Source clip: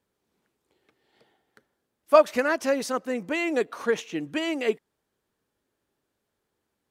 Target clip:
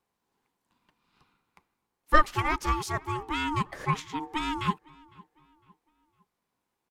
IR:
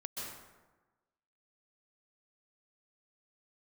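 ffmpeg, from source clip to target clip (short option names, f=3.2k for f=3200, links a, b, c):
-filter_complex "[0:a]asplit=2[a][b];[b]adelay=506,lowpass=f=3k:p=1,volume=-24dB,asplit=2[c][d];[d]adelay=506,lowpass=f=3k:p=1,volume=0.41,asplit=2[e][f];[f]adelay=506,lowpass=f=3k:p=1,volume=0.41[g];[a][c][e][g]amix=inputs=4:normalize=0,aeval=exprs='val(0)*sin(2*PI*610*n/s)':c=same"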